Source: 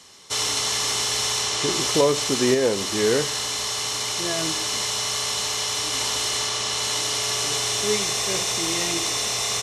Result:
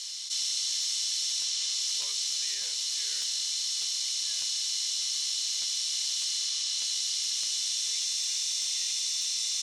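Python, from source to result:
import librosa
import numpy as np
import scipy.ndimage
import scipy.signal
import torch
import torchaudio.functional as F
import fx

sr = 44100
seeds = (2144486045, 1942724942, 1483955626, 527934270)

y = fx.ladder_bandpass(x, sr, hz=5500.0, resonance_pct=30)
y = fx.buffer_crackle(y, sr, first_s=0.81, period_s=0.6, block=512, kind='repeat')
y = fx.env_flatten(y, sr, amount_pct=70)
y = y * 10.0 ** (4.0 / 20.0)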